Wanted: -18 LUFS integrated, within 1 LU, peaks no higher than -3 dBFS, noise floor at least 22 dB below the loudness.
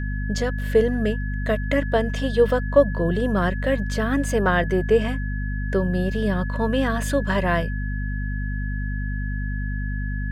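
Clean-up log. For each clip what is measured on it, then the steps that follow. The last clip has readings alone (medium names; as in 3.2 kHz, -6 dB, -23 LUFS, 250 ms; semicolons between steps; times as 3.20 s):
hum 50 Hz; highest harmonic 250 Hz; hum level -24 dBFS; steady tone 1.7 kHz; tone level -35 dBFS; loudness -23.5 LUFS; peak level -3.5 dBFS; loudness target -18.0 LUFS
-> de-hum 50 Hz, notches 5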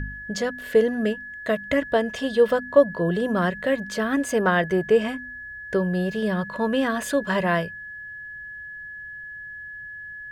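hum not found; steady tone 1.7 kHz; tone level -35 dBFS
-> band-stop 1.7 kHz, Q 30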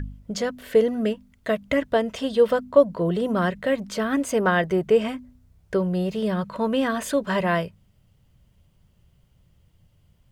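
steady tone not found; loudness -23.5 LUFS; peak level -4.5 dBFS; loudness target -18.0 LUFS
-> trim +5.5 dB; peak limiter -3 dBFS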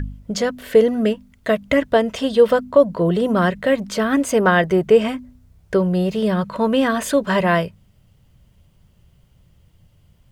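loudness -18.5 LUFS; peak level -3.0 dBFS; noise floor -56 dBFS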